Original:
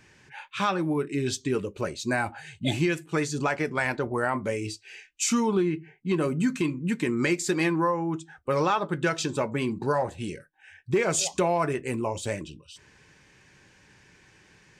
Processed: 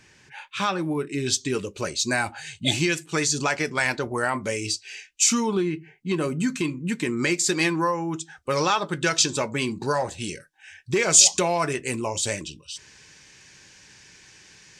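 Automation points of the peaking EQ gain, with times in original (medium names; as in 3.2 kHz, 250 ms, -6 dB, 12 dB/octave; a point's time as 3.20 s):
peaking EQ 5.9 kHz 2.2 oct
1.01 s +5.5 dB
1.62 s +13.5 dB
4.81 s +13.5 dB
5.39 s +7 dB
7.21 s +7 dB
7.79 s +14 dB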